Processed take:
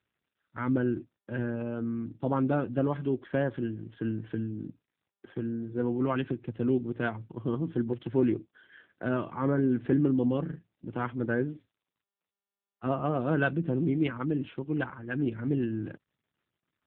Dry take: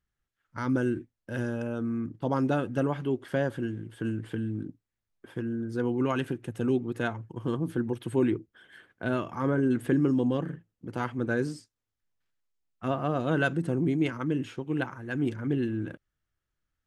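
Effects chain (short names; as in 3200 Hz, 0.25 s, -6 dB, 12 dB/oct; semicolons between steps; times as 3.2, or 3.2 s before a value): AMR-NB 7.4 kbps 8000 Hz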